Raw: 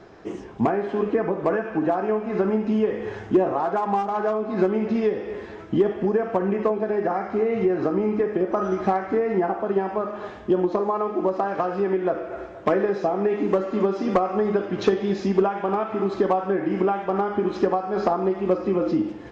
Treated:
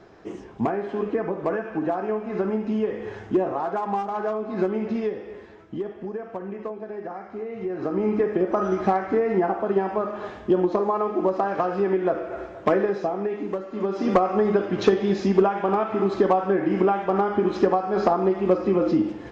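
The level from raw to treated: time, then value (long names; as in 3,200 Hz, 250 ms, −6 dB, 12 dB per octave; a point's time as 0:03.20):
0:04.91 −3 dB
0:05.67 −10.5 dB
0:07.57 −10.5 dB
0:08.08 +0.5 dB
0:12.75 +0.5 dB
0:13.69 −9 dB
0:14.05 +1.5 dB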